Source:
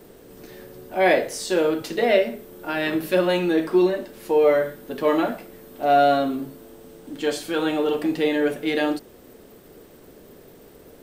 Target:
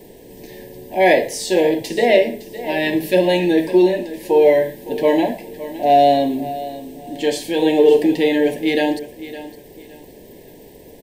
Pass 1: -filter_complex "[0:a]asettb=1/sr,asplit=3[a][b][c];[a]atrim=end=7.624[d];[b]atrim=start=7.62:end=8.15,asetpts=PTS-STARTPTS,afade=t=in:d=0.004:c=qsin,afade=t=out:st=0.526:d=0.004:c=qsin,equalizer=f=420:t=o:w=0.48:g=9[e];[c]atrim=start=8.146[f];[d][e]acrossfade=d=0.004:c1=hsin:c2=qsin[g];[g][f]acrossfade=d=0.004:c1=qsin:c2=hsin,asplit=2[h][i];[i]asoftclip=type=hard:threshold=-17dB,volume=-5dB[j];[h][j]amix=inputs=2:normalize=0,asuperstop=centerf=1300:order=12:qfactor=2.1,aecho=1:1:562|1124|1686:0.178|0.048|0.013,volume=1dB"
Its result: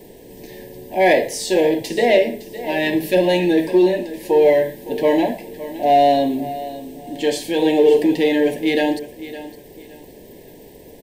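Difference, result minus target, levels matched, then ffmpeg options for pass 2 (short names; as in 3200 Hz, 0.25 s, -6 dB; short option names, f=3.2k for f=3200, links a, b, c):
hard clip: distortion +18 dB
-filter_complex "[0:a]asettb=1/sr,asplit=3[a][b][c];[a]atrim=end=7.624[d];[b]atrim=start=7.62:end=8.15,asetpts=PTS-STARTPTS,afade=t=in:d=0.004:c=qsin,afade=t=out:st=0.526:d=0.004:c=qsin,equalizer=f=420:t=o:w=0.48:g=9[e];[c]atrim=start=8.146[f];[d][e]acrossfade=d=0.004:c1=hsin:c2=qsin[g];[g][f]acrossfade=d=0.004:c1=qsin:c2=hsin,asplit=2[h][i];[i]asoftclip=type=hard:threshold=-10dB,volume=-5dB[j];[h][j]amix=inputs=2:normalize=0,asuperstop=centerf=1300:order=12:qfactor=2.1,aecho=1:1:562|1124|1686:0.178|0.048|0.013,volume=1dB"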